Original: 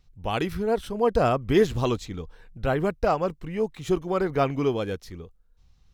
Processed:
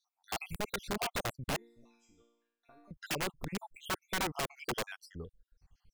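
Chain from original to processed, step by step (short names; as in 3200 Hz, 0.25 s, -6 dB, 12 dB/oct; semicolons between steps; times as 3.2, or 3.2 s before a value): random spectral dropouts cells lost 69%; compressor 4:1, threshold -26 dBFS, peak gain reduction 10 dB; 1.56–2.91 resonator bank A#3 major, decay 0.78 s; wrapped overs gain 25 dB; gain -3 dB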